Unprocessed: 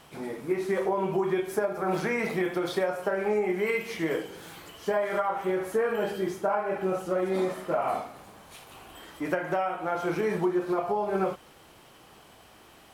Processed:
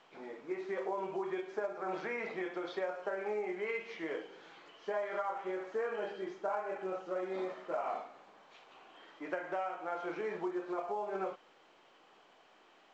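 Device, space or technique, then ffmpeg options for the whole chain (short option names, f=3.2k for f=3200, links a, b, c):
telephone: -af "highpass=340,lowpass=3.6k,volume=-8.5dB" -ar 16000 -c:a pcm_mulaw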